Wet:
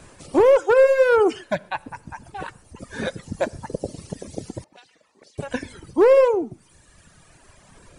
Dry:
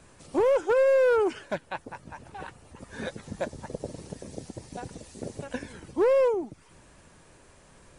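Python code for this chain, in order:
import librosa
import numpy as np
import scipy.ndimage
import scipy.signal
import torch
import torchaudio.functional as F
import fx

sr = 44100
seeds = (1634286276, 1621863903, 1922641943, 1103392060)

y = fx.rev_gated(x, sr, seeds[0], gate_ms=160, shape='flat', drr_db=10.5)
y = fx.dereverb_blind(y, sr, rt60_s=1.8)
y = fx.auto_wah(y, sr, base_hz=540.0, top_hz=4700.0, q=3.0, full_db=-33.5, direction='up', at=(4.64, 5.38))
y = F.gain(torch.from_numpy(y), 8.0).numpy()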